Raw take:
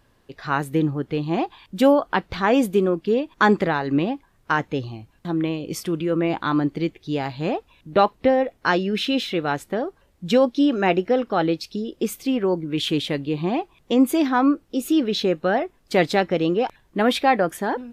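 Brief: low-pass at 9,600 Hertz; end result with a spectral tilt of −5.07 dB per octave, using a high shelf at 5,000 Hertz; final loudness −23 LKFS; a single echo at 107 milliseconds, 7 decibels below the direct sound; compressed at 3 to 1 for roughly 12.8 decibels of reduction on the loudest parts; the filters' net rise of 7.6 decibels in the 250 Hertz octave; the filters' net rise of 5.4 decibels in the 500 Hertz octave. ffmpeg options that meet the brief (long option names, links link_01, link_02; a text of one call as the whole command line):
ffmpeg -i in.wav -af "lowpass=9600,equalizer=frequency=250:width_type=o:gain=8,equalizer=frequency=500:width_type=o:gain=4,highshelf=frequency=5000:gain=6,acompressor=threshold=-22dB:ratio=3,aecho=1:1:107:0.447,volume=1dB" out.wav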